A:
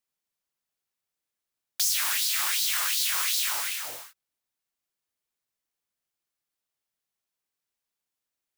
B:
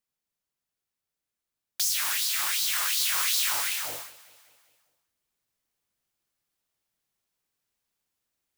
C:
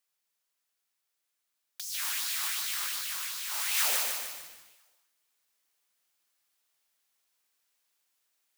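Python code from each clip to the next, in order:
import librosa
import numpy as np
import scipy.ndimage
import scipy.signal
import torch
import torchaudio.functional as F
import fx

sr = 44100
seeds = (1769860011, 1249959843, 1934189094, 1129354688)

y1 = fx.low_shelf(x, sr, hz=260.0, db=6.0)
y1 = fx.rider(y1, sr, range_db=10, speed_s=2.0)
y1 = fx.echo_feedback(y1, sr, ms=198, feedback_pct=58, wet_db=-20.5)
y2 = fx.highpass(y1, sr, hz=960.0, slope=6)
y2 = fx.over_compress(y2, sr, threshold_db=-32.0, ratio=-0.5)
y2 = fx.echo_crushed(y2, sr, ms=150, feedback_pct=55, bits=8, wet_db=-3.5)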